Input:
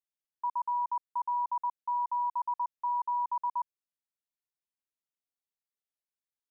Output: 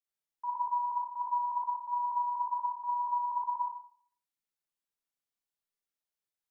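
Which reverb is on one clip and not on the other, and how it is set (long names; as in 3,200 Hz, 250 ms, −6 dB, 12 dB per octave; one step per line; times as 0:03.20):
four-comb reverb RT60 0.55 s, DRR −5.5 dB
level −6 dB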